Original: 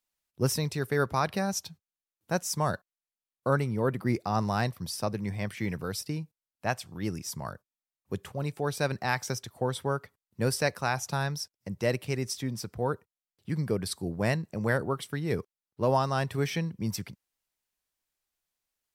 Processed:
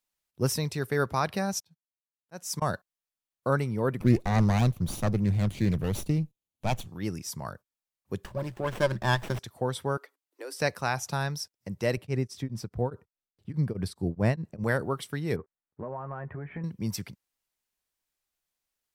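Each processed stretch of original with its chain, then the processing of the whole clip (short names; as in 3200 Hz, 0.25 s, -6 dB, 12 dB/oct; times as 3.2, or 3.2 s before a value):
1.6–2.62 HPF 110 Hz + gate -49 dBFS, range -28 dB + auto swell 0.235 s
4–6.89 minimum comb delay 0.3 ms + low shelf 300 Hz +11 dB
8.24–9.39 ripple EQ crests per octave 1.3, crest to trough 13 dB + running maximum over 9 samples
9.97–10.6 Chebyshev high-pass 280 Hz, order 8 + compressor 3:1, threshold -39 dBFS
11.97–14.64 tilt -2 dB/oct + beating tremolo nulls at 4.8 Hz
15.36–16.64 steep low-pass 1900 Hz + compressor 5:1, threshold -34 dBFS + doubler 13 ms -8 dB
whole clip: dry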